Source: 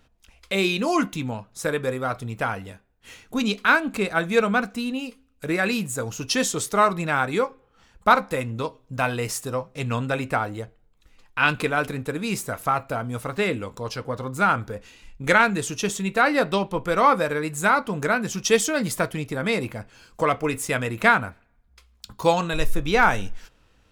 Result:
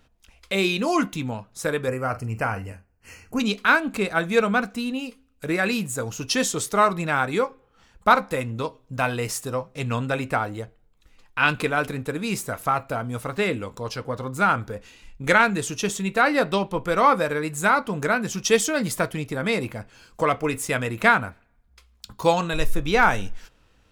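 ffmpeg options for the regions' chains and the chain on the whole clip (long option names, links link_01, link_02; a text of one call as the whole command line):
ffmpeg -i in.wav -filter_complex "[0:a]asettb=1/sr,asplit=3[link_01][link_02][link_03];[link_01]atrim=end=1.884[link_04];[link_02]atrim=start=1.88:end=3.4,asetpts=PTS-STARTPTS,afade=type=in:duration=0.004:curve=qsin,afade=type=out:start_time=1.516:duration=0.004:curve=qsin,asuperstop=centerf=3600:order=8:qfactor=2.8,equalizer=frequency=85:width=2.3:gain=9.5,asplit=2[link_05][link_06];[link_06]adelay=45,volume=-13.5dB[link_07];[link_05][link_07]amix=inputs=2:normalize=0,atrim=end_sample=67032[link_08];[link_03]atrim=start=3.396[link_09];[link_04][link_08]acrossfade=duration=0.004:curve1=hsin:curve2=qsin[link_10];[link_10][link_09]acrossfade=duration=0.004:curve1=qsin:curve2=hsin" out.wav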